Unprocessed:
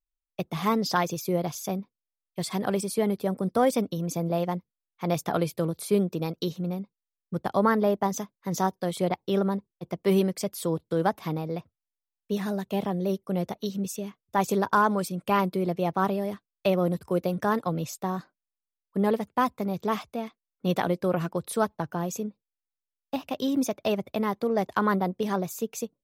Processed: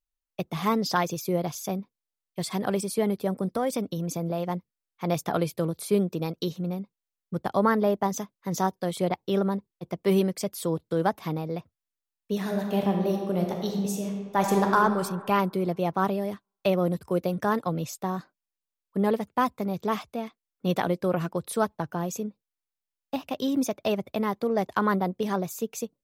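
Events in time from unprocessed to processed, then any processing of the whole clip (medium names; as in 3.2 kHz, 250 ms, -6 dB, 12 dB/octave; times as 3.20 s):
3.45–4.50 s: compression 2:1, threshold -25 dBFS
12.35–14.75 s: reverb throw, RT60 1.7 s, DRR 2 dB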